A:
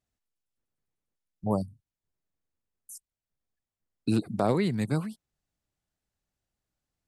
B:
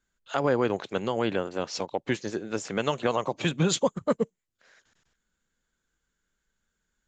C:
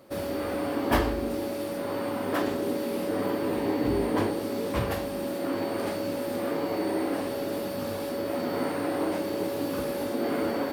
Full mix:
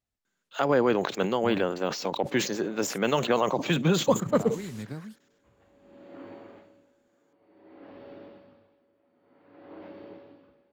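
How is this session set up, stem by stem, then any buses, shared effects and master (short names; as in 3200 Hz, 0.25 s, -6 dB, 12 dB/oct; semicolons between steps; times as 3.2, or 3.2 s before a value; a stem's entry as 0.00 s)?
-3.0 dB, 0.00 s, bus A, no send, dry
+1.5 dB, 0.25 s, no bus, no send, de-esser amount 80%; HPF 140 Hz 24 dB/oct; sustainer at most 85 dB/s
-14.5 dB, 0.70 s, bus A, no send, LPF 3500 Hz 24 dB/oct; dB-linear tremolo 0.54 Hz, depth 25 dB
bus A: 0.0 dB, compressor, threshold -34 dBFS, peak gain reduction 11.5 dB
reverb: off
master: decimation joined by straight lines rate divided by 2×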